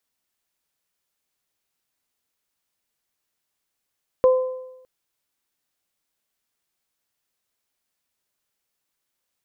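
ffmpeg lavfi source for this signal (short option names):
-f lavfi -i "aevalsrc='0.316*pow(10,-3*t/0.93)*sin(2*PI*513*t)+0.0668*pow(10,-3*t/0.81)*sin(2*PI*1026*t)':d=0.61:s=44100"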